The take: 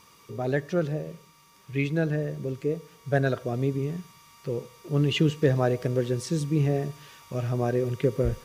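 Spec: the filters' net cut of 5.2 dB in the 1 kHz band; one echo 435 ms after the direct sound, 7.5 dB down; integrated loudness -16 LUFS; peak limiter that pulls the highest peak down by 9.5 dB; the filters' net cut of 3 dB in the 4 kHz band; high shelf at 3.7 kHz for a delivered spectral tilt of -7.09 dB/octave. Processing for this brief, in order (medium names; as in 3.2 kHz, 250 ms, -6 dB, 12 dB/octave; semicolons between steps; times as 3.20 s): peaking EQ 1 kHz -9 dB; treble shelf 3.7 kHz +7.5 dB; peaking EQ 4 kHz -9 dB; peak limiter -19.5 dBFS; delay 435 ms -7.5 dB; trim +15 dB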